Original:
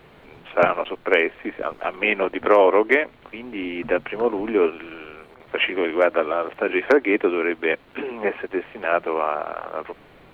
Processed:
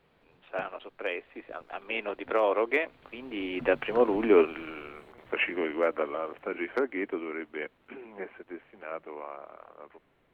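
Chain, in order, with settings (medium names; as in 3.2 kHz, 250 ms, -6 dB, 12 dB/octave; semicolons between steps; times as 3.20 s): Doppler pass-by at 4.27 s, 22 m/s, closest 16 m; trim -1.5 dB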